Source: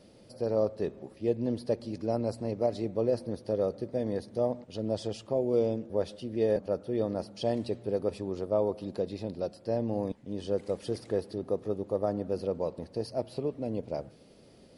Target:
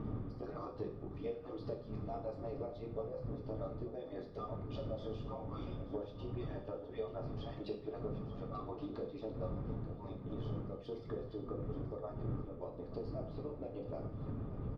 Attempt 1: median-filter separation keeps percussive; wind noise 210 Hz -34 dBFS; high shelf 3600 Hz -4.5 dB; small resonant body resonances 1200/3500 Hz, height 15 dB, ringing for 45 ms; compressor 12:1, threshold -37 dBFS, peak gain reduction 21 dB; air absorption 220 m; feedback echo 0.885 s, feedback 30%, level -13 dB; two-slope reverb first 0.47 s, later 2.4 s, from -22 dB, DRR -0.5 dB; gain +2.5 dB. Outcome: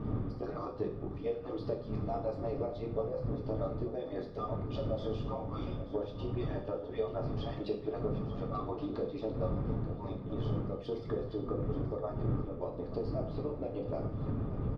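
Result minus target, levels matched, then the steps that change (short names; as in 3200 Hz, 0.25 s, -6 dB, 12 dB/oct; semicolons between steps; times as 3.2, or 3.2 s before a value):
compressor: peak gain reduction -7 dB
change: compressor 12:1, threshold -44.5 dBFS, peak gain reduction 28 dB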